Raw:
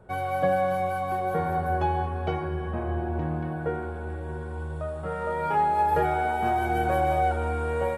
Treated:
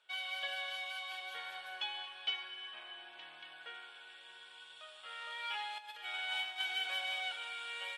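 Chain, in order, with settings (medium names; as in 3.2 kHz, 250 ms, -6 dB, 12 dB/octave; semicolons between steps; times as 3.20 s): 5.78–6.62 s: compressor with a negative ratio -27 dBFS, ratio -0.5; ladder band-pass 3.5 kHz, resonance 65%; trim +14.5 dB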